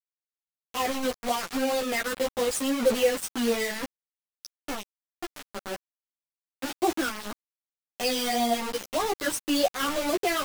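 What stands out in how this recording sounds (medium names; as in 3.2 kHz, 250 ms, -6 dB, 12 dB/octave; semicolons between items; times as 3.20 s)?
phasing stages 12, 1.8 Hz, lowest notch 720–2100 Hz; a quantiser's noise floor 6-bit, dither none; a shimmering, thickened sound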